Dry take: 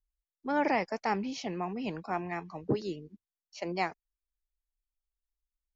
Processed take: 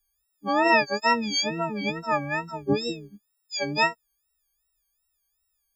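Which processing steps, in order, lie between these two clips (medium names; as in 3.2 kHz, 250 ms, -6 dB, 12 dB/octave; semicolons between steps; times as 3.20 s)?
partials quantised in pitch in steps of 6 st; wow and flutter 140 cents; trim +5 dB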